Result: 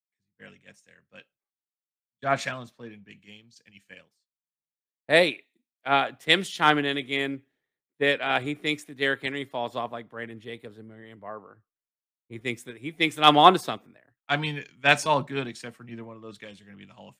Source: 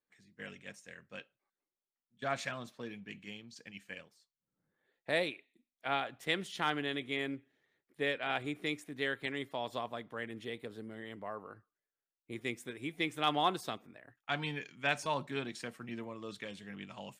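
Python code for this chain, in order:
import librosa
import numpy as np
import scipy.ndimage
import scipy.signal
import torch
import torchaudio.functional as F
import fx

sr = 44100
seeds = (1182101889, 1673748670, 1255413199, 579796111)

y = fx.band_widen(x, sr, depth_pct=100)
y = F.gain(torch.from_numpy(y), 8.0).numpy()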